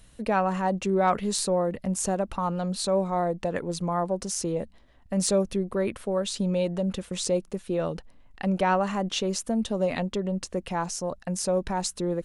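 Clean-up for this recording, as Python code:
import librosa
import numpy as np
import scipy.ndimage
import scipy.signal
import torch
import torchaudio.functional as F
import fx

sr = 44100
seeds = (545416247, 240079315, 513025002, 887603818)

y = fx.fix_declip(x, sr, threshold_db=-12.0)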